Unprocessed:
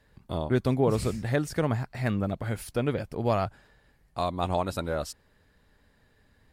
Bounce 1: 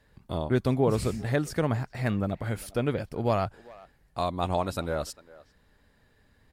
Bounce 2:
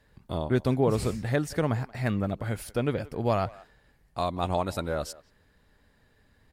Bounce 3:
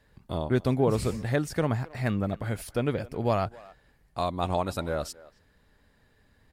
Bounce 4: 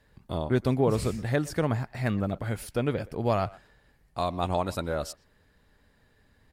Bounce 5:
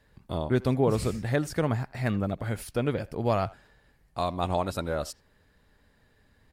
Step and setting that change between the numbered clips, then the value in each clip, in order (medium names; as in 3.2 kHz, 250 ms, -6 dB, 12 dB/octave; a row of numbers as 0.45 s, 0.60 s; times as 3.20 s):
speakerphone echo, time: 400 ms, 180 ms, 270 ms, 120 ms, 80 ms